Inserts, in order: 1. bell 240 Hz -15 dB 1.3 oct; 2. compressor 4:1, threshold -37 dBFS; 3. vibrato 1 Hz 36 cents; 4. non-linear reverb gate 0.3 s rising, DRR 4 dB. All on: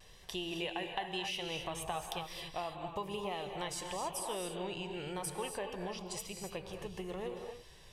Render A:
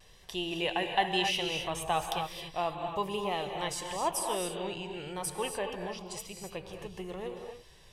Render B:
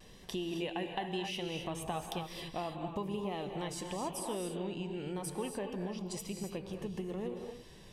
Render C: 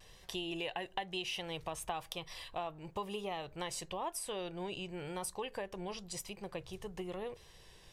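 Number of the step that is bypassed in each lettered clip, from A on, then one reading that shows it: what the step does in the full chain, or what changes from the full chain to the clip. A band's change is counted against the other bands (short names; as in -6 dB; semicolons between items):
2, momentary loudness spread change +7 LU; 1, 250 Hz band +7.0 dB; 4, loudness change -1.5 LU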